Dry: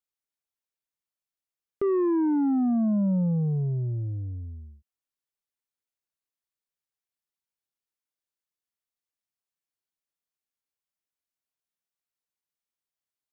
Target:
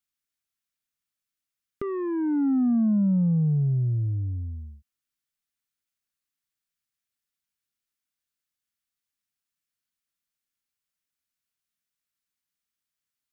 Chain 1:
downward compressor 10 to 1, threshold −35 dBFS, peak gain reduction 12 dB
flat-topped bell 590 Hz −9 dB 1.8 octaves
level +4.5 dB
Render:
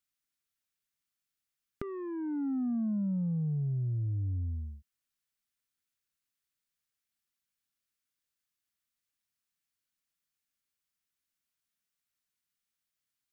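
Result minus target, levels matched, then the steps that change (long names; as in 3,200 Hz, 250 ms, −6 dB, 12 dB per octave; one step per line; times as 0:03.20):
downward compressor: peak gain reduction +9.5 dB
change: downward compressor 10 to 1, threshold −24 dBFS, peak gain reduction 2.5 dB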